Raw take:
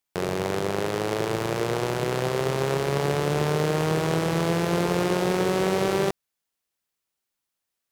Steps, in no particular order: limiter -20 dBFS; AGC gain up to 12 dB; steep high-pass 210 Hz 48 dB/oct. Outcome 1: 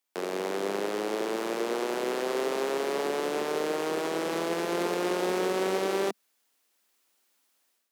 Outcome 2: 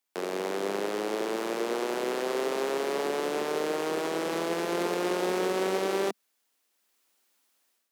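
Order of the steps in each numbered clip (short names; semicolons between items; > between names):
steep high-pass > AGC > limiter; AGC > steep high-pass > limiter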